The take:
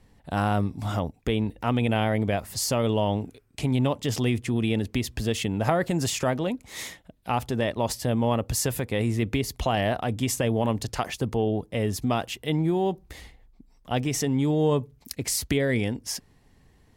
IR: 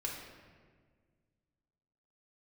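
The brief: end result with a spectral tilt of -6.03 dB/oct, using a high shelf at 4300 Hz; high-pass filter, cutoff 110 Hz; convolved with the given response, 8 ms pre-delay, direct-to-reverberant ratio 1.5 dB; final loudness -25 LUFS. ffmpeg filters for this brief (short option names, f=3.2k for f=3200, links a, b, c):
-filter_complex "[0:a]highpass=110,highshelf=f=4.3k:g=-6,asplit=2[a][b];[1:a]atrim=start_sample=2205,adelay=8[c];[b][c]afir=irnorm=-1:irlink=0,volume=-3dB[d];[a][d]amix=inputs=2:normalize=0"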